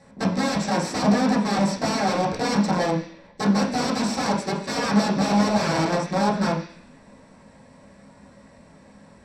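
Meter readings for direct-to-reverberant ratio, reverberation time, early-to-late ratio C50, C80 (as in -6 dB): -7.0 dB, 0.50 s, 7.0 dB, 10.0 dB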